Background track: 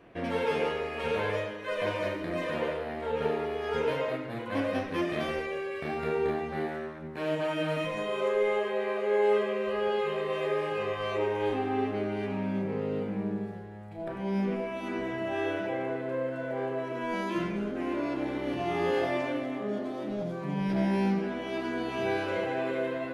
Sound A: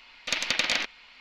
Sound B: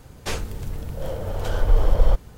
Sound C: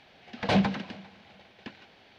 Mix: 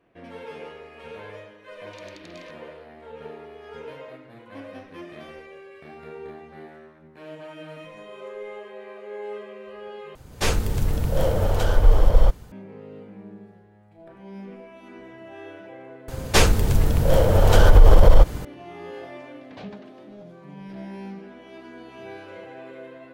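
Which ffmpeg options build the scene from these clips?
ffmpeg -i bed.wav -i cue0.wav -i cue1.wav -i cue2.wav -filter_complex "[2:a]asplit=2[link_01][link_02];[0:a]volume=-10dB[link_03];[1:a]acompressor=threshold=-32dB:ratio=6:attack=3.2:release=140:knee=1:detection=peak[link_04];[link_01]dynaudnorm=framelen=110:gausssize=5:maxgain=10dB[link_05];[link_02]alimiter=level_in=14dB:limit=-1dB:release=50:level=0:latency=1[link_06];[link_03]asplit=2[link_07][link_08];[link_07]atrim=end=10.154[link_09];[link_05]atrim=end=2.37,asetpts=PTS-STARTPTS,volume=-2dB[link_10];[link_08]atrim=start=12.516[link_11];[link_04]atrim=end=1.2,asetpts=PTS-STARTPTS,volume=-14dB,afade=type=in:duration=0.004:curve=hsin,afade=type=out:start_time=1.196:duration=0.004:curve=hsin,adelay=1660[link_12];[link_06]atrim=end=2.37,asetpts=PTS-STARTPTS,volume=-2dB,afade=type=in:duration=0.004:curve=hsin,afade=type=out:start_time=2.366:duration=0.004:curve=hsin,adelay=16080[link_13];[3:a]atrim=end=2.18,asetpts=PTS-STARTPTS,volume=-17.5dB,afade=type=in:duration=0.004:curve=hsin,afade=type=out:start_time=2.176:duration=0.004:curve=hsin,adelay=841428S[link_14];[link_09][link_10]acrossfade=duration=0.004:curve1=hsin:curve2=hsin[link_15];[link_15][link_11]acrossfade=duration=0.004:curve1=hsin:curve2=hsin[link_16];[link_16][link_12][link_13][link_14]amix=inputs=4:normalize=0" out.wav

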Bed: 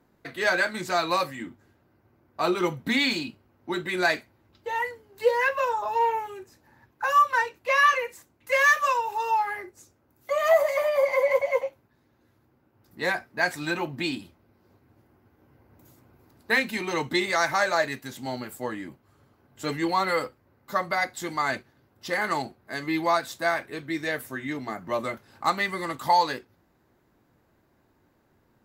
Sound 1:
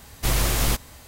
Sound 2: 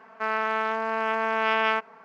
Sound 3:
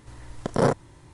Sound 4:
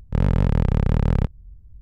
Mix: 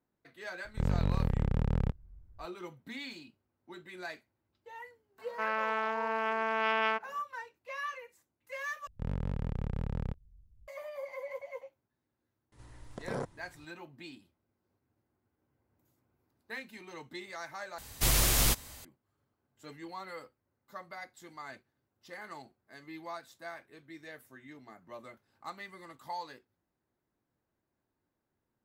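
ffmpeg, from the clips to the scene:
ffmpeg -i bed.wav -i cue0.wav -i cue1.wav -i cue2.wav -i cue3.wav -filter_complex "[4:a]asplit=2[link_01][link_02];[0:a]volume=-19dB[link_03];[3:a]alimiter=limit=-17.5dB:level=0:latency=1:release=14[link_04];[1:a]highshelf=frequency=2600:gain=6.5[link_05];[link_03]asplit=3[link_06][link_07][link_08];[link_06]atrim=end=8.874[link_09];[link_02]atrim=end=1.81,asetpts=PTS-STARTPTS,volume=-16dB[link_10];[link_07]atrim=start=10.676:end=17.784[link_11];[link_05]atrim=end=1.07,asetpts=PTS-STARTPTS,volume=-6.5dB[link_12];[link_08]atrim=start=18.846[link_13];[link_01]atrim=end=1.81,asetpts=PTS-STARTPTS,volume=-10.5dB,afade=type=in:duration=0.004:curve=hsin,afade=type=out:start_time=1.806:duration=0.004:curve=hsin,adelay=650[link_14];[2:a]atrim=end=2.04,asetpts=PTS-STARTPTS,volume=-6dB,afade=type=in:duration=0.004:curve=hsin,afade=type=out:start_time=2.036:duration=0.004:curve=hsin,adelay=5180[link_15];[link_04]atrim=end=1.13,asetpts=PTS-STARTPTS,volume=-9.5dB,afade=type=in:duration=0.004:curve=hsin,afade=type=out:start_time=1.126:duration=0.004:curve=hsin,adelay=552132S[link_16];[link_09][link_10]acrossfade=duration=0.004:curve1=hsin:curve2=hsin[link_17];[link_17][link_11]acrossfade=duration=0.004:curve1=hsin:curve2=hsin[link_18];[link_18][link_12]acrossfade=duration=0.004:curve1=hsin:curve2=hsin[link_19];[link_19][link_13]acrossfade=duration=0.004:curve1=hsin:curve2=hsin[link_20];[link_20][link_14][link_15][link_16]amix=inputs=4:normalize=0" out.wav

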